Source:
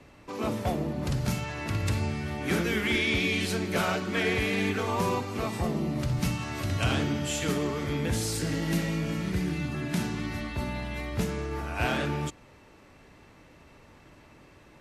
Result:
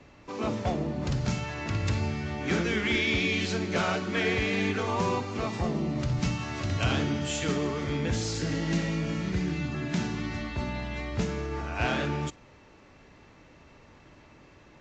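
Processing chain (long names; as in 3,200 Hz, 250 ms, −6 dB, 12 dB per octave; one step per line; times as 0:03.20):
AAC 64 kbit/s 16,000 Hz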